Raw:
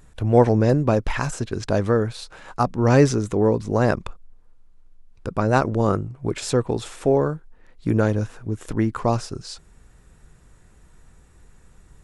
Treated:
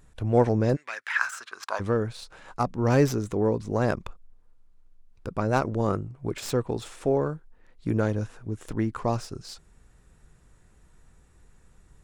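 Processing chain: tracing distortion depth 0.034 ms; 0.75–1.79 s: resonant high-pass 2.1 kHz -> 980 Hz, resonance Q 4.6; trim -5.5 dB

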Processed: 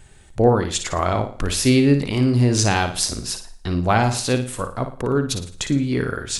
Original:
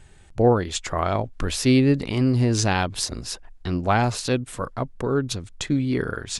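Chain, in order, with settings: treble shelf 8.8 kHz +8 dB; flutter echo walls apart 9.7 m, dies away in 0.39 s; on a send at -20.5 dB: reverberation RT60 0.80 s, pre-delay 35 ms; on the sum: trim +2 dB

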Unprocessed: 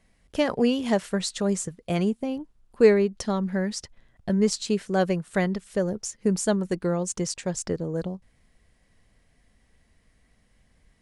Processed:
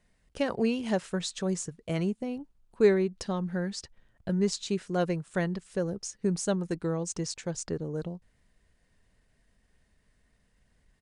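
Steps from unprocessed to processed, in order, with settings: pitch shift -1 st; trim -5 dB

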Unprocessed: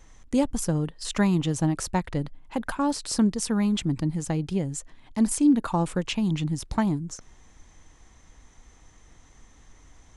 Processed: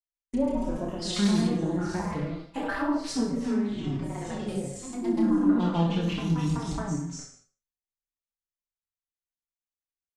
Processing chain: spectral sustain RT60 0.52 s; gate -38 dBFS, range -54 dB; low-pass that closes with the level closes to 960 Hz, closed at -20.5 dBFS; treble shelf 3 kHz +11 dB; reverse bouncing-ball echo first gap 30 ms, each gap 1.15×, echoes 5; ever faster or slower copies 159 ms, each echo +1 st, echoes 3; gated-style reverb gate 190 ms falling, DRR 10.5 dB; endless flanger 4.8 ms -0.27 Hz; trim -5 dB

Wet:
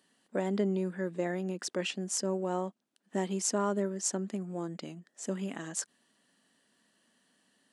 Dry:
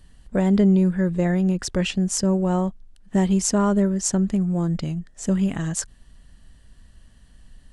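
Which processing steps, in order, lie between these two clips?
high-pass 240 Hz 24 dB/octave; trim -7.5 dB

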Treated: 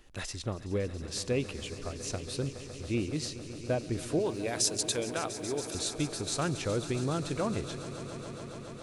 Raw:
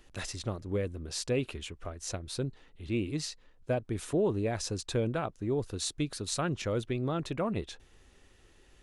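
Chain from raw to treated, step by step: 4.19–5.75 s: RIAA curve recording; echo with a slow build-up 139 ms, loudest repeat 5, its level -16.5 dB

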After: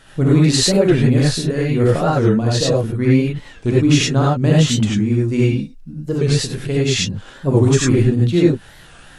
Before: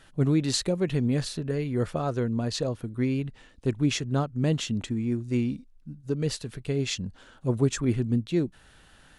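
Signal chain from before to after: gated-style reverb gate 120 ms rising, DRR -5.5 dB; warped record 45 rpm, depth 160 cents; trim +6.5 dB

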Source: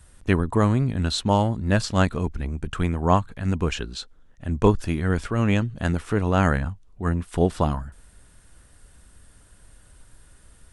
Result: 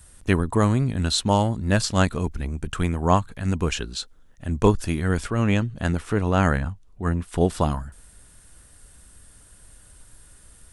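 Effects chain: treble shelf 5.8 kHz +9.5 dB, from 5.30 s +2.5 dB, from 7.41 s +9 dB

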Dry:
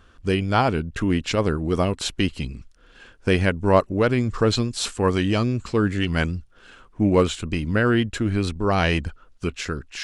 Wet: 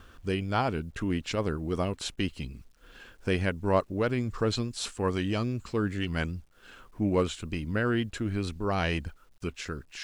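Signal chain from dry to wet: upward compressor, threshold -34 dBFS; expander -46 dBFS; word length cut 10-bit, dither none; trim -8 dB

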